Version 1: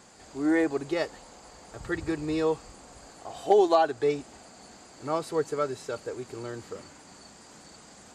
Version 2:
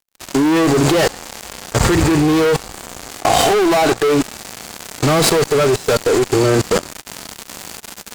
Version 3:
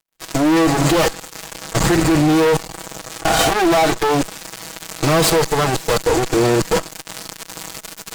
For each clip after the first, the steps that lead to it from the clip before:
fuzz box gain 40 dB, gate -45 dBFS; harmonic-percussive split harmonic +8 dB; level held to a coarse grid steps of 20 dB; trim +7 dB
comb filter that takes the minimum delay 6.2 ms

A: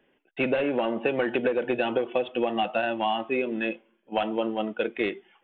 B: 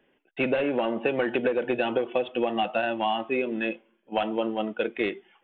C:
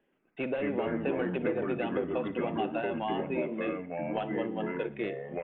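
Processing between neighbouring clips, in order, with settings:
no audible change
treble shelf 3.1 kHz -9.5 dB; feedback delay 60 ms, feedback 46%, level -19 dB; ever faster or slower copies 121 ms, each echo -4 st, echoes 2; trim -7 dB

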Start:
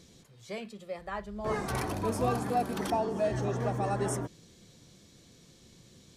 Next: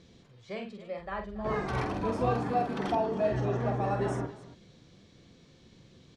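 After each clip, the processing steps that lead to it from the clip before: low-pass 3.7 kHz 12 dB/octave; on a send: multi-tap echo 47/278 ms -6/-16 dB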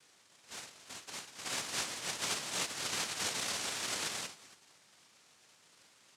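spectral gate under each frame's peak -10 dB weak; noise-vocoded speech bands 1

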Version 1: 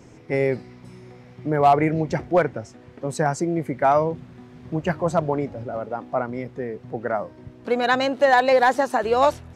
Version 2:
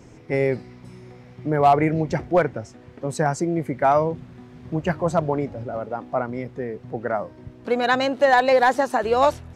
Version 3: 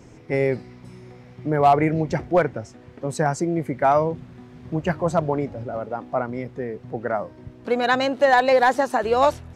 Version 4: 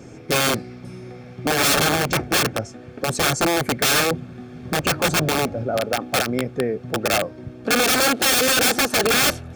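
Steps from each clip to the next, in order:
bass shelf 68 Hz +5.5 dB
no audible change
integer overflow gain 18.5 dB; comb of notches 980 Hz; trim +7 dB

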